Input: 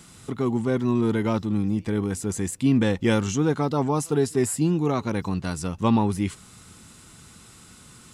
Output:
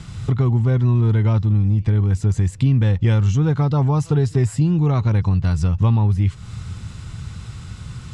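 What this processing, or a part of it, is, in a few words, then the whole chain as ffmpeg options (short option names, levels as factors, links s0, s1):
jukebox: -af "lowpass=5200,lowshelf=f=170:t=q:w=1.5:g=13.5,acompressor=threshold=0.0708:ratio=4,volume=2.37"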